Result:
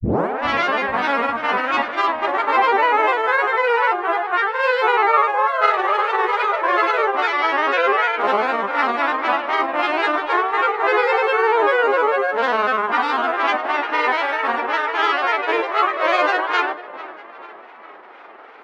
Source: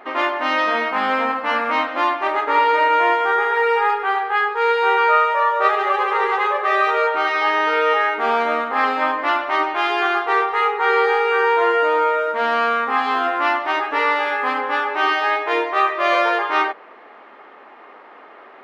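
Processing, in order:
turntable start at the beginning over 0.43 s
feedback echo with a low-pass in the loop 427 ms, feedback 55%, low-pass 4,400 Hz, level −16 dB
granular cloud, spray 20 ms, pitch spread up and down by 3 semitones
level +1 dB

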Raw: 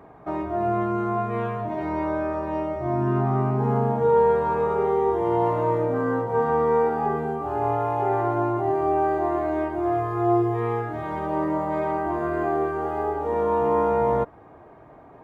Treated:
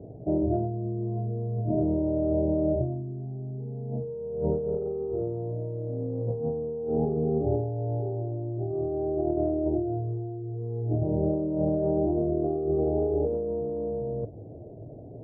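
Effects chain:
Butterworth low-pass 620 Hz 48 dB per octave
parametric band 110 Hz +10.5 dB 0.67 octaves
compressor whose output falls as the input rises −29 dBFS, ratio −1

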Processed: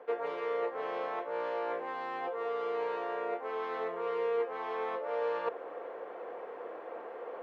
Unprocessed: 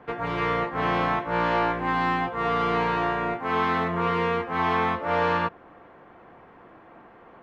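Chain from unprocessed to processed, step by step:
reversed playback
downward compressor 16 to 1, threshold −38 dBFS, peak gain reduction 19 dB
reversed playback
high-pass with resonance 480 Hz, resonance Q 4.9
level +1 dB

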